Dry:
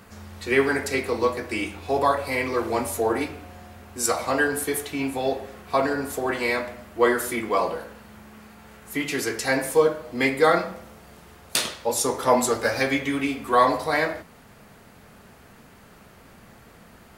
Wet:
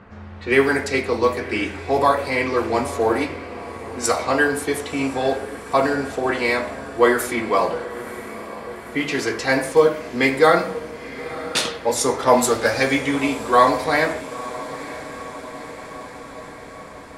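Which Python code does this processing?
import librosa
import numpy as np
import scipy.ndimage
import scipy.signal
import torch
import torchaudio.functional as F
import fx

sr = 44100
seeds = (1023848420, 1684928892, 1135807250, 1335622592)

y = fx.env_lowpass(x, sr, base_hz=1900.0, full_db=-18.0)
y = fx.echo_diffused(y, sr, ms=960, feedback_pct=67, wet_db=-15.0)
y = y * librosa.db_to_amplitude(4.0)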